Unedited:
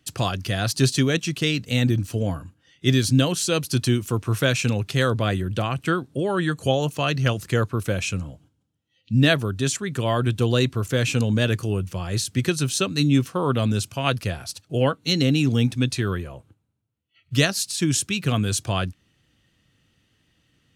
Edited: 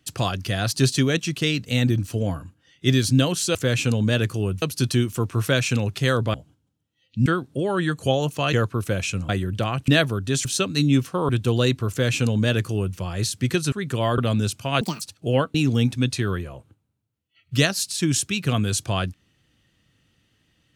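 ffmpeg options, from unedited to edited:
-filter_complex "[0:a]asplit=15[a][b][c][d][e][f][g][h][i][j][k][l][m][n][o];[a]atrim=end=3.552[p];[b]atrim=start=10.838:end=11.912[q];[c]atrim=start=3.548:end=5.272[r];[d]atrim=start=8.278:end=9.202[s];[e]atrim=start=5.858:end=7.132[t];[f]atrim=start=7.518:end=8.282[u];[g]atrim=start=5.268:end=5.862[v];[h]atrim=start=9.198:end=9.772[w];[i]atrim=start=12.658:end=13.502[x];[j]atrim=start=10.228:end=12.662[y];[k]atrim=start=9.768:end=10.232[z];[l]atrim=start=13.498:end=14.134[aa];[m]atrim=start=14.13:end=14.49,asetpts=PTS-STARTPTS,asetrate=77616,aresample=44100,atrim=end_sample=9020,asetpts=PTS-STARTPTS[ab];[n]atrim=start=14.486:end=15.022[ac];[o]atrim=start=15.338[ad];[p][q]acrossfade=d=0.004:c1=hsin:c2=hsin[ae];[ae][r]acrossfade=d=0.004:c1=hsin:c2=hsin[af];[af][s]acrossfade=d=0.004:c1=hsin:c2=hsin[ag];[ag][t]acrossfade=d=0.004:c1=hsin:c2=hsin[ah];[ah][u]acrossfade=d=0.004:c1=hsin:c2=hsin[ai];[ai][v]acrossfade=d=0.004:c1=hsin:c2=hsin[aj];[aj][w]acrossfade=d=0.004:c1=hsin:c2=hsin[ak];[ak][x]acrossfade=d=0.004:c1=hsin:c2=hsin[al];[al][y]acrossfade=d=0.004:c1=hsin:c2=hsin[am];[am][z]acrossfade=d=0.004:c1=hsin:c2=hsin[an];[an][aa]acrossfade=d=0.004:c1=hsin:c2=hsin[ao];[ao][ab]acrossfade=d=0.004:c1=hsin:c2=hsin[ap];[ap][ac]acrossfade=d=0.004:c1=hsin:c2=hsin[aq];[aq][ad]acrossfade=d=0.004:c1=hsin:c2=hsin"

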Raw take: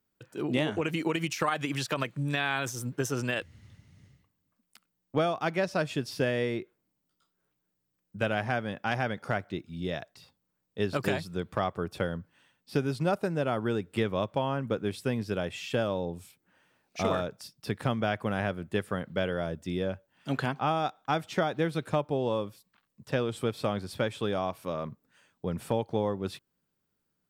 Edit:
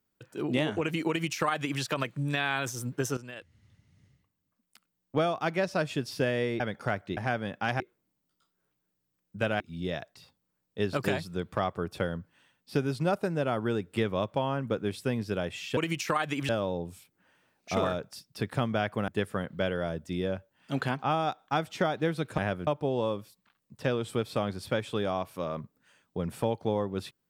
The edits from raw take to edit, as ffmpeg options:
-filter_complex "[0:a]asplit=11[a][b][c][d][e][f][g][h][i][j][k];[a]atrim=end=3.17,asetpts=PTS-STARTPTS,afade=t=out:st=3.166:d=0.004:c=hsin:silence=0.177828[l];[b]atrim=start=3.17:end=6.602,asetpts=PTS-STARTPTS,afade=t=in:d=2.05:silence=0.177828[m];[c]atrim=start=9.028:end=9.602[n];[d]atrim=start=8.398:end=9.032[o];[e]atrim=start=6.598:end=8.402[p];[f]atrim=start=9.598:end=15.772[q];[g]atrim=start=1.088:end=1.812[r];[h]atrim=start=15.768:end=18.362[s];[i]atrim=start=18.648:end=21.952[t];[j]atrim=start=18.358:end=18.652[u];[k]atrim=start=21.948[v];[l][m]concat=n=2:v=0:a=1[w];[w][n]acrossfade=d=0.004:c1=hsin:c2=hsin[x];[x][o]acrossfade=d=0.004:c1=hsin:c2=hsin[y];[y][p]acrossfade=d=0.004:c1=hsin:c2=hsin[z];[z][q]acrossfade=d=0.004:c1=hsin:c2=hsin[aa];[aa][r]acrossfade=d=0.004:c1=hsin:c2=hsin[ab];[ab][s]acrossfade=d=0.004:c1=hsin:c2=hsin[ac];[ac][t]acrossfade=d=0.004:c1=hsin:c2=hsin[ad];[ad][u]acrossfade=d=0.004:c1=hsin:c2=hsin[ae];[ae][v]acrossfade=d=0.004:c1=hsin:c2=hsin"

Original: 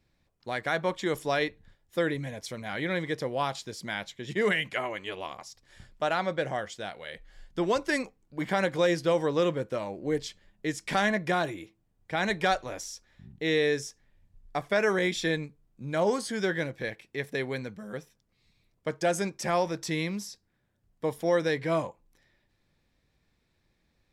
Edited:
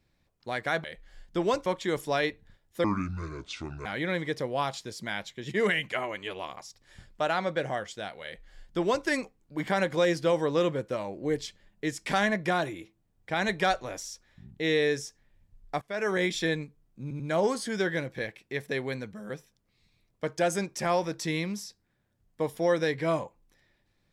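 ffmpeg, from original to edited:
-filter_complex "[0:a]asplit=8[a][b][c][d][e][f][g][h];[a]atrim=end=0.842[i];[b]atrim=start=7.058:end=7.882[j];[c]atrim=start=0.838:end=2.024[k];[d]atrim=start=2.02:end=2.67,asetpts=PTS-STARTPTS,asetrate=28224,aresample=44100,atrim=end_sample=44789,asetpts=PTS-STARTPTS[l];[e]atrim=start=2.666:end=14.63,asetpts=PTS-STARTPTS,afade=t=out:st=11.96:d=0.004:c=hsin:silence=0.0794328[m];[f]atrim=start=14.63:end=15.922,asetpts=PTS-STARTPTS,afade=t=in:d=0.38:silence=0.0794328[n];[g]atrim=start=15.828:end=15.922[o];[h]atrim=start=15.828[p];[i][j]acrossfade=d=0.004:c1=hsin:c2=hsin[q];[q][k]acrossfade=d=0.004:c1=hsin:c2=hsin[r];[r][l]acrossfade=d=0.004:c1=hsin:c2=hsin[s];[m][n]concat=n=2:v=0:a=1[t];[s][t]acrossfade=d=0.004:c1=hsin:c2=hsin[u];[u][o]acrossfade=d=0.004:c1=hsin:c2=hsin[v];[v][p]acrossfade=d=0.004:c1=hsin:c2=hsin"

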